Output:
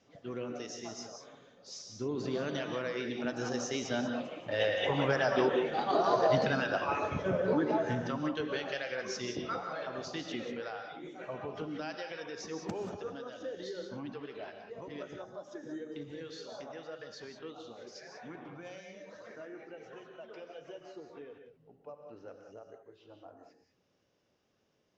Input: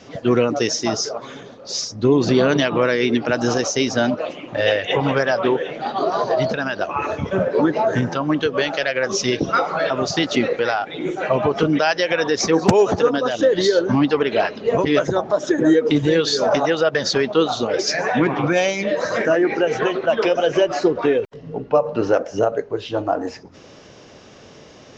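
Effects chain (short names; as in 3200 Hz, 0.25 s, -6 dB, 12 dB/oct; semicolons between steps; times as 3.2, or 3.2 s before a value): Doppler pass-by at 6.12, 5 m/s, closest 4.9 m; non-linear reverb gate 0.21 s rising, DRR 4.5 dB; gain -8 dB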